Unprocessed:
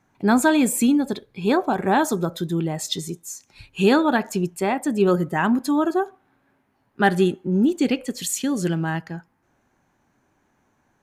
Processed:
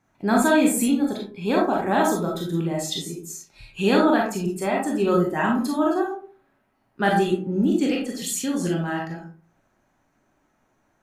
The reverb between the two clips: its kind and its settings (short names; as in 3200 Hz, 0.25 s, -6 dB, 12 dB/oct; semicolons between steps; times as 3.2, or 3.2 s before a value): digital reverb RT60 0.43 s, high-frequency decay 0.4×, pre-delay 0 ms, DRR -2 dB; gain -4.5 dB